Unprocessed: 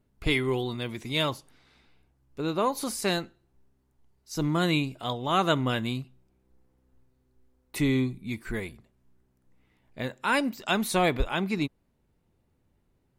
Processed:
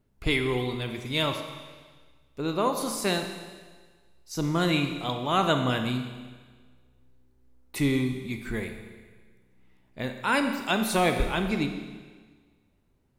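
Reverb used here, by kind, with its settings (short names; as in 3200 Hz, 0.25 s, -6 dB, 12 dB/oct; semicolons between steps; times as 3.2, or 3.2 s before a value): Schroeder reverb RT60 1.5 s, combs from 28 ms, DRR 6 dB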